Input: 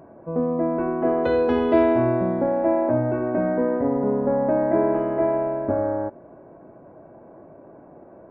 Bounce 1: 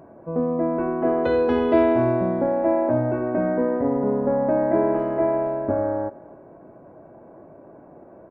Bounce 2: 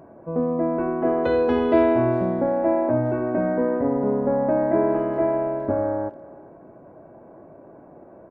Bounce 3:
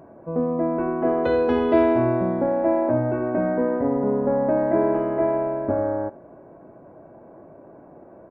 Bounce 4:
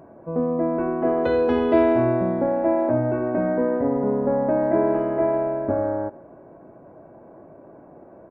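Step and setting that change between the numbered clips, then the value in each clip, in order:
speakerphone echo, time: 260, 400, 80, 140 ms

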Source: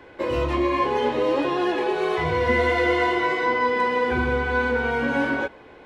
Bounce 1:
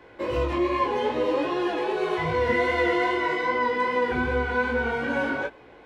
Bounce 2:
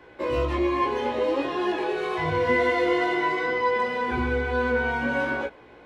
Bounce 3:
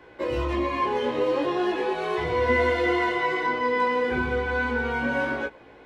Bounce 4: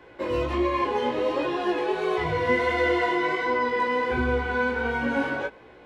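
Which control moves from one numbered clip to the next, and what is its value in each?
chorus, rate: 2.5, 0.2, 0.39, 1.4 Hz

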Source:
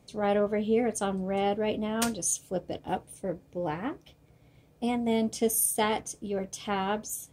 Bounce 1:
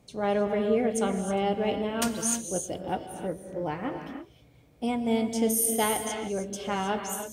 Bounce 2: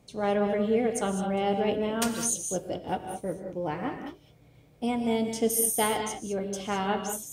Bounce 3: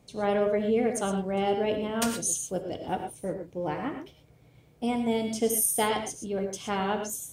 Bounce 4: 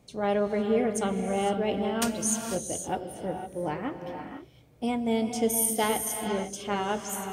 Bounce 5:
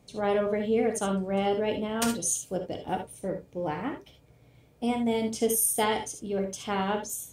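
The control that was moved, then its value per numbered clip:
non-linear reverb, gate: 340, 230, 140, 530, 90 ms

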